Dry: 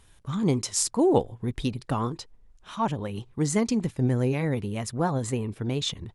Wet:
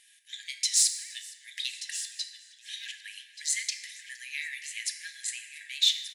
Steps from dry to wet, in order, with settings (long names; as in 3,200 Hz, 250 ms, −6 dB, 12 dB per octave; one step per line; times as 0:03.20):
dynamic equaliser 3,900 Hz, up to +7 dB, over −53 dBFS, Q 4.2
in parallel at −6 dB: hard clipping −23 dBFS, distortion −9 dB
on the sum: linear-phase brick-wall high-pass 1,600 Hz
on a send: single-tap delay 1,181 ms −13 dB
on the sum: feedback delay network reverb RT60 2.3 s, high-frequency decay 0.4×, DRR 4.5 dB
feedback echo with a swinging delay time 468 ms, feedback 67%, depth 124 cents, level −23 dB